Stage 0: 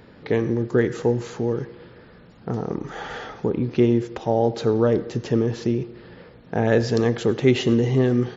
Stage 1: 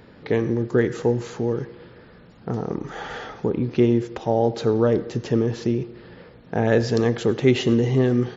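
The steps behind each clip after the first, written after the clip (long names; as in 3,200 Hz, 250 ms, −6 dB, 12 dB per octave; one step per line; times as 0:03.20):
no processing that can be heard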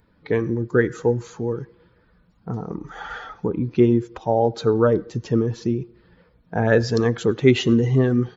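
spectral dynamics exaggerated over time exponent 1.5
dynamic equaliser 1,400 Hz, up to +6 dB, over −46 dBFS, Q 2.6
level +3.5 dB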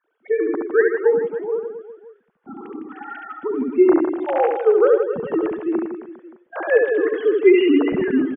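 three sine waves on the formant tracks
on a send: reverse bouncing-ball delay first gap 70 ms, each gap 1.25×, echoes 5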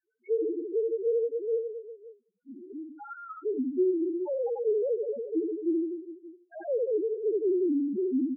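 brickwall limiter −14.5 dBFS, peak gain reduction 11.5 dB
spectral peaks only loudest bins 1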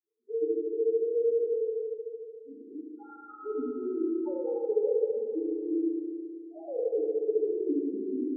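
linear-phase brick-wall low-pass 1,400 Hz
feedback delay network reverb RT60 2.2 s, low-frequency decay 0.95×, high-frequency decay 0.95×, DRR −4 dB
level −8.5 dB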